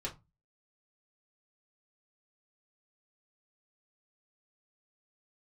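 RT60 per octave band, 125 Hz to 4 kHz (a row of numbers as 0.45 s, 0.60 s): 0.40 s, 0.35 s, 0.20 s, 0.25 s, 0.20 s, 0.15 s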